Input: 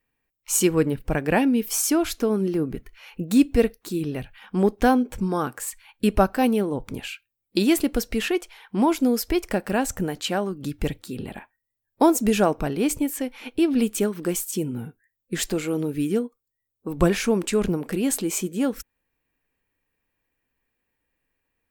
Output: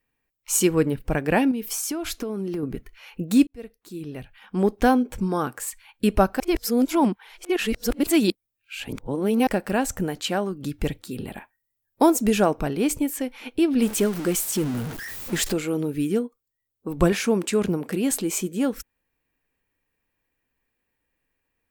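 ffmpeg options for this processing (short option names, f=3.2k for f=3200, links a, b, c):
-filter_complex "[0:a]asettb=1/sr,asplit=3[a][b][c];[a]atrim=end=1.514[d];[b]atrim=start=1.51:end=2.63,asetpts=PTS-STARTPTS,afade=t=in:d=0.004:c=qsin,afade=t=out:st=1.116:d=0.004:c=qsin,acompressor=threshold=-24dB:ratio=10:attack=3.2:release=140:knee=1:detection=peak[e];[c]atrim=start=2.626[f];[d][e]acrossfade=d=0.004:c1=hsin:c2=qsin[g];[g][f]acrossfade=d=0.004:c1=qsin:c2=hsin,asettb=1/sr,asplit=3[h][i][j];[h]atrim=end=11.114[k];[i]atrim=start=11.11:end=12.1,asetpts=PTS-STARTPTS,afade=t=in:d=0.004:c=qsin,afade=t=out:st=0.986:d=0.004:c=qsin,equalizer=f=14k:t=o:w=1.1:g=6.5[l];[j]atrim=start=12.096[m];[k][l]acrossfade=d=0.004:c1=hsin:c2=qsin[n];[n][m]acrossfade=d=0.004:c1=qsin:c2=hsin,asettb=1/sr,asplit=3[o][p][q];[o]atrim=end=13.824[r];[p]atrim=start=13.82:end=15.53,asetpts=PTS-STARTPTS,afade=t=in:d=0.004:c=qsin,afade=t=out:st=1.706:d=0.004:c=qsin,aeval=exprs='val(0)+0.5*0.0355*sgn(val(0))':c=same[s];[q]atrim=start=15.526[t];[r][s]acrossfade=d=0.004:c1=hsin:c2=qsin[u];[u][t]acrossfade=d=0.004:c1=qsin:c2=hsin,asettb=1/sr,asplit=3[v][w][x];[v]atrim=end=17.124[y];[w]atrim=start=17.12:end=18.11,asetpts=PTS-STARTPTS,afade=t=in:d=0.004:c=qsin,afade=t=out:st=0.986:d=0.004:c=qsin,highpass=81[z];[x]atrim=start=18.106[aa];[y][z]acrossfade=d=0.004:c1=hsin:c2=qsin[ab];[ab][aa]acrossfade=d=0.004:c1=qsin:c2=hsin,asplit=4[ac][ad][ae][af];[ac]atrim=end=3.47,asetpts=PTS-STARTPTS,afade=t=out:st=3.466:d=0.004:c=hsin[ag];[ad]atrim=start=3.47:end=6.402,asetpts=PTS-STARTPTS,afade=t=in:d=1.32[ah];[ae]atrim=start=6.398:end=9.472,asetpts=PTS-STARTPTS,areverse[ai];[af]atrim=start=9.468[aj];[ag][ah]concat=n=2:v=0:a=1[ak];[ak][ai]acrossfade=d=0.004:c1=hsin:c2=hsin[al];[al][aj]acrossfade=d=0.004:c1=hsin:c2=hsin"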